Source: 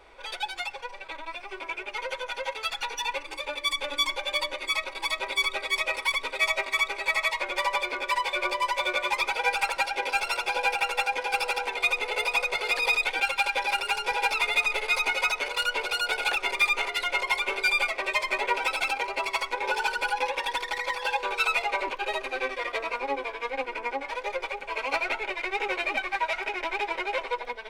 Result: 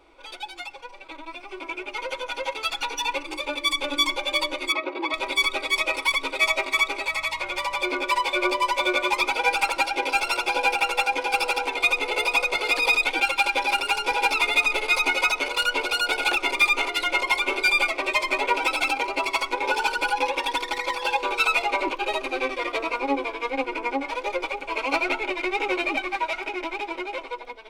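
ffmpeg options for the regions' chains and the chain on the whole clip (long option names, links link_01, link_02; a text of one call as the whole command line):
ffmpeg -i in.wav -filter_complex "[0:a]asettb=1/sr,asplit=3[link_01][link_02][link_03];[link_01]atrim=end=4.724[link_04];[link_02]atrim=start=4.72:end=5.14,asetpts=PTS-STARTPTS,afade=type=in:duration=0.004:curve=qsin,afade=type=out:start_time=0.416:duration=0.004:curve=qsin,highpass=210,lowpass=2300,equalizer=frequency=360:width=1.2:gain=8.5[link_05];[link_03]atrim=start=5.136[link_06];[link_04][link_05]acrossfade=duration=0.004:curve1=hsin:curve2=qsin[link_07];[link_07][link_06]acrossfade=duration=0.004:curve1=qsin:curve2=hsin,asettb=1/sr,asplit=3[link_08][link_09][link_10];[link_08]atrim=end=7.074[link_11];[link_09]atrim=start=7.07:end=7.82,asetpts=PTS-STARTPTS,afade=type=in:duration=0.004:curve=qsin,afade=type=out:start_time=0.746:duration=0.004:curve=qsin,equalizer=frequency=250:width_type=o:width=1.4:gain=-15,acompressor=threshold=-28dB:ratio=2:attack=3.2:release=140:knee=1:detection=peak,aeval=exprs='val(0)+0.00126*(sin(2*PI*60*n/s)+sin(2*PI*2*60*n/s)/2+sin(2*PI*3*60*n/s)/3+sin(2*PI*4*60*n/s)/4+sin(2*PI*5*60*n/s)/5)':channel_layout=same[link_12];[link_10]atrim=start=7.816[link_13];[link_11][link_12]acrossfade=duration=0.004:curve1=hsin:curve2=qsin[link_14];[link_14][link_13]acrossfade=duration=0.004:curve1=qsin:curve2=hsin,superequalizer=6b=3.16:11b=0.501,dynaudnorm=framelen=280:gausssize=13:maxgain=7.5dB,volume=-3.5dB" out.wav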